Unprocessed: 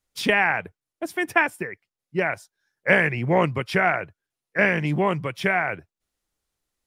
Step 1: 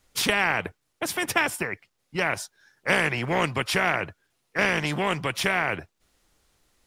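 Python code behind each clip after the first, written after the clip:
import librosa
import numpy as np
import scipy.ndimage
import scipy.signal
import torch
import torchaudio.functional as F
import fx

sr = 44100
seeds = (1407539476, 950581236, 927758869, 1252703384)

y = fx.high_shelf(x, sr, hz=9100.0, db=-6.5)
y = fx.spectral_comp(y, sr, ratio=2.0)
y = y * librosa.db_to_amplitude(-2.0)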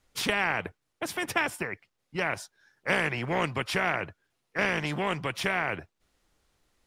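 y = fx.high_shelf(x, sr, hz=5000.0, db=-5.5)
y = y * librosa.db_to_amplitude(-3.5)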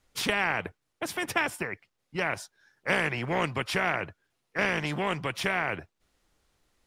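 y = x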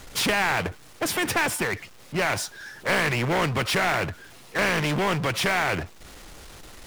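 y = fx.power_curve(x, sr, exponent=0.5)
y = y * librosa.db_to_amplitude(-3.0)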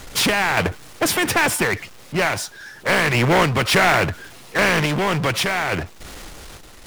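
y = fx.tremolo_random(x, sr, seeds[0], hz=3.5, depth_pct=55)
y = y * librosa.db_to_amplitude(8.0)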